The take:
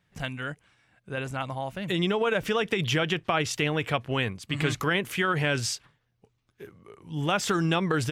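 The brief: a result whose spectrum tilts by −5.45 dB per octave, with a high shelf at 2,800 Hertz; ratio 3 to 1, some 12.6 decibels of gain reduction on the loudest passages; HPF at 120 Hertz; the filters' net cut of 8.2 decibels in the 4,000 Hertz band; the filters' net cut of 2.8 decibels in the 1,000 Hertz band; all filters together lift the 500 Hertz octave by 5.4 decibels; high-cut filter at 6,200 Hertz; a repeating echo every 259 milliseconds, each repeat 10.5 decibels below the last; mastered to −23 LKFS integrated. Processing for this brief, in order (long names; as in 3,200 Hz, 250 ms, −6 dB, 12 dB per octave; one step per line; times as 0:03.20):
high-pass filter 120 Hz
low-pass filter 6,200 Hz
parametric band 500 Hz +8 dB
parametric band 1,000 Hz −5.5 dB
high-shelf EQ 2,800 Hz −5.5 dB
parametric band 4,000 Hz −6.5 dB
downward compressor 3 to 1, threshold −36 dBFS
repeating echo 259 ms, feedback 30%, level −10.5 dB
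level +14.5 dB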